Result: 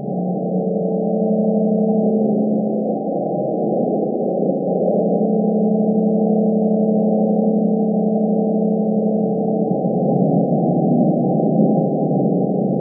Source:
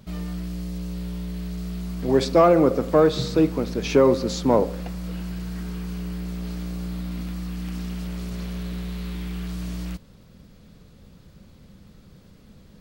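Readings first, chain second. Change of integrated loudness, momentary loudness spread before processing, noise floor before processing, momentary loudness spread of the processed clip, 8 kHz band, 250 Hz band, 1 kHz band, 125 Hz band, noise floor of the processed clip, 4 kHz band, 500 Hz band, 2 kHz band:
+7.0 dB, 14 LU, -51 dBFS, 4 LU, under -40 dB, +11.0 dB, +5.5 dB, +8.5 dB, -21 dBFS, under -40 dB, +6.0 dB, under -40 dB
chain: one-bit delta coder 32 kbps, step -20 dBFS; two-band feedback delay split 600 Hz, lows 207 ms, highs 315 ms, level -13.5 dB; dynamic bell 600 Hz, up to +6 dB, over -31 dBFS, Q 0.73; compressor with a negative ratio -25 dBFS, ratio -1; ever faster or slower copies 269 ms, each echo +1 st, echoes 3; Schroeder reverb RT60 2.9 s, combs from 29 ms, DRR -5.5 dB; FFT band-pass 130–810 Hz

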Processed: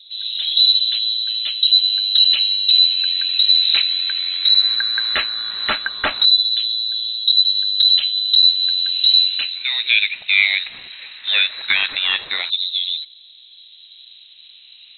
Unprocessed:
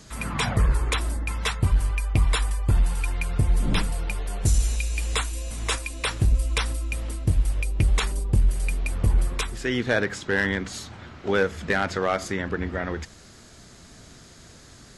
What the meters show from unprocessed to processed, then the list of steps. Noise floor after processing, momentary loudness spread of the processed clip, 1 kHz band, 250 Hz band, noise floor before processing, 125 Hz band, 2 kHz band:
-45 dBFS, 9 LU, -2.0 dB, under -15 dB, -48 dBFS, under -30 dB, +7.5 dB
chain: rattle on loud lows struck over -30 dBFS, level -37 dBFS; LFO low-pass saw up 0.16 Hz 550–3100 Hz; frequency inversion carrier 4 kHz; trim +3.5 dB

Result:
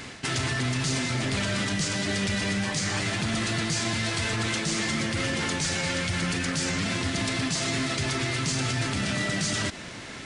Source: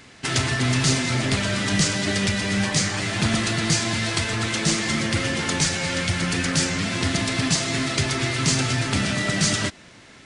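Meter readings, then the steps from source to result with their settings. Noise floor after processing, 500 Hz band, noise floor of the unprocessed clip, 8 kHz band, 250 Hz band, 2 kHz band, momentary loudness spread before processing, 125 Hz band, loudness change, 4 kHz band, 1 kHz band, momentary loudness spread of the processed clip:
-40 dBFS, -4.0 dB, -48 dBFS, -5.5 dB, -4.5 dB, -4.0 dB, 3 LU, -5.0 dB, -4.5 dB, -5.0 dB, -4.0 dB, 1 LU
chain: reverse; compression 6:1, threshold -30 dBFS, peak gain reduction 14 dB; reverse; peak limiter -26.5 dBFS, peak gain reduction 8 dB; trim +8 dB

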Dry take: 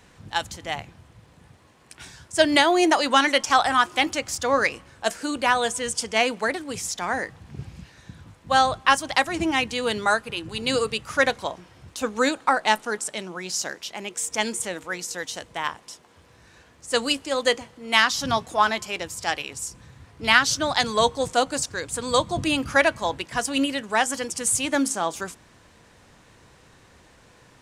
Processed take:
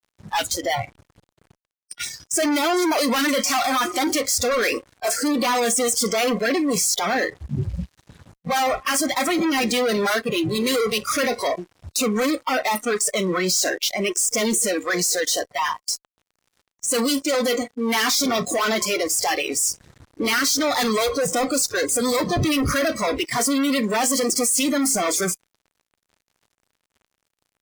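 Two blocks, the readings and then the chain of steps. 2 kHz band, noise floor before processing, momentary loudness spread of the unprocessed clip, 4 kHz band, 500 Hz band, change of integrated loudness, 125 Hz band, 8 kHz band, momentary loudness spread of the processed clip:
-1.5 dB, -55 dBFS, 13 LU, +1.0 dB, +3.0 dB, +2.0 dB, +6.0 dB, +7.5 dB, 7 LU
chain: LFO notch sine 9.3 Hz 920–3100 Hz; fuzz box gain 44 dB, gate -47 dBFS; spectral noise reduction 20 dB; trim -5.5 dB

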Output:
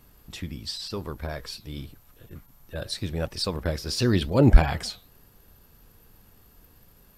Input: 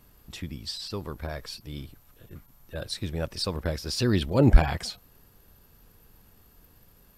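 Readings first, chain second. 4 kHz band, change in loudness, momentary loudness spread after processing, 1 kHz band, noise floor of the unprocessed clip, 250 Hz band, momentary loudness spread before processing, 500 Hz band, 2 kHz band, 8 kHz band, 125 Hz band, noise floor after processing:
+1.5 dB, +1.5 dB, 21 LU, +1.5 dB, -58 dBFS, +1.5 dB, 20 LU, +1.5 dB, +1.5 dB, +1.5 dB, +1.5 dB, -57 dBFS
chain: flange 0.9 Hz, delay 2.2 ms, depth 9.2 ms, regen -83%; trim +6 dB

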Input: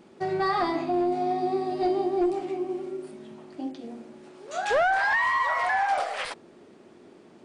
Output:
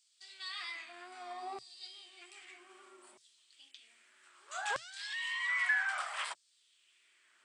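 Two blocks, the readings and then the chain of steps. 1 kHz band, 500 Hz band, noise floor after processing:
-18.5 dB, -26.5 dB, -72 dBFS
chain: wow and flutter 46 cents; LFO high-pass saw down 0.63 Hz 820–5200 Hz; graphic EQ with 31 bands 125 Hz +11 dB, 500 Hz -7 dB, 800 Hz -8 dB, 3.15 kHz +4 dB, 8 kHz +12 dB; trim -8.5 dB

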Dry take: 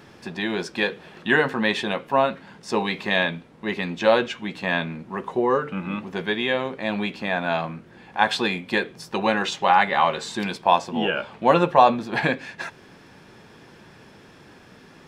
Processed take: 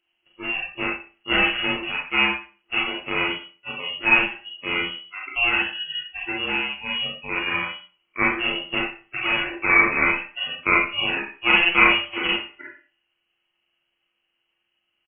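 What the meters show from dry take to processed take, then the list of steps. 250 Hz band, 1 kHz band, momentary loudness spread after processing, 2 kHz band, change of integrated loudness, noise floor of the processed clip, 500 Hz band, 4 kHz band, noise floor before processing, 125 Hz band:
-4.5 dB, -6.0 dB, 13 LU, +5.5 dB, +1.5 dB, -75 dBFS, -9.5 dB, +5.0 dB, -49 dBFS, -8.0 dB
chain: sorted samples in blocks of 16 samples; spectral noise reduction 26 dB; frequency inversion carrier 3.1 kHz; on a send: delay 85 ms -21.5 dB; on the sum: Schroeder reverb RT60 0.36 s, combs from 30 ms, DRR -1.5 dB; endings held to a fixed fall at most 570 dB/s; trim -3 dB

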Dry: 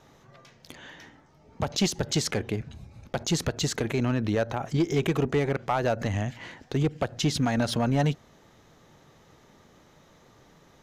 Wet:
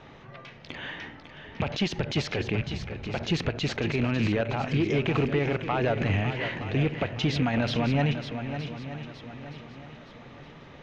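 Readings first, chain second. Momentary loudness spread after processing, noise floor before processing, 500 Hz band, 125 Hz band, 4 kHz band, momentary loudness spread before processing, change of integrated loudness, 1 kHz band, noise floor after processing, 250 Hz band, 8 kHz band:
20 LU, -58 dBFS, -0.5 dB, +1.0 dB, -0.5 dB, 13 LU, -0.5 dB, -0.5 dB, -49 dBFS, 0.0 dB, -13.0 dB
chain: rattle on loud lows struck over -33 dBFS, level -31 dBFS; peaking EQ 2.6 kHz +7.5 dB 1 oct; peak limiter -24 dBFS, peak gain reduction 11.5 dB; distance through air 220 m; shuffle delay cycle 918 ms, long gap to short 1.5:1, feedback 36%, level -9.5 dB; trim +7.5 dB

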